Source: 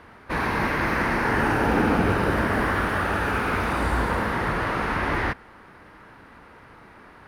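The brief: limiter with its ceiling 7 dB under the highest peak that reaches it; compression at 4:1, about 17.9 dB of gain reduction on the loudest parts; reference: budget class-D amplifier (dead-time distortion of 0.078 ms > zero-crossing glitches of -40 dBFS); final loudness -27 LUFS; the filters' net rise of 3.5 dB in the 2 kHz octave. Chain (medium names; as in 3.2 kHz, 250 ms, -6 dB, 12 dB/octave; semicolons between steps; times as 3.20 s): peaking EQ 2 kHz +4.5 dB; compression 4:1, threshold -39 dBFS; peak limiter -32.5 dBFS; dead-time distortion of 0.078 ms; zero-crossing glitches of -40 dBFS; trim +14.5 dB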